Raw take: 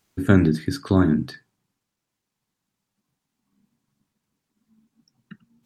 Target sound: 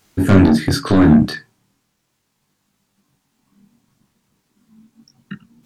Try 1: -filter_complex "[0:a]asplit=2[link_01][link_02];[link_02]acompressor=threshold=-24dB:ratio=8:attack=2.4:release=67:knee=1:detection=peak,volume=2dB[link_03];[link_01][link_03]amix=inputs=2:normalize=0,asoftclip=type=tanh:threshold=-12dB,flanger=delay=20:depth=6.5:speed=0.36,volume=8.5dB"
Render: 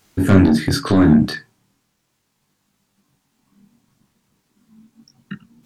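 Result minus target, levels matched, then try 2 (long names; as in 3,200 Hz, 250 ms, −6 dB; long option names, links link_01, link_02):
downward compressor: peak gain reduction +9 dB
-filter_complex "[0:a]asplit=2[link_01][link_02];[link_02]acompressor=threshold=-13.5dB:ratio=8:attack=2.4:release=67:knee=1:detection=peak,volume=2dB[link_03];[link_01][link_03]amix=inputs=2:normalize=0,asoftclip=type=tanh:threshold=-12dB,flanger=delay=20:depth=6.5:speed=0.36,volume=8.5dB"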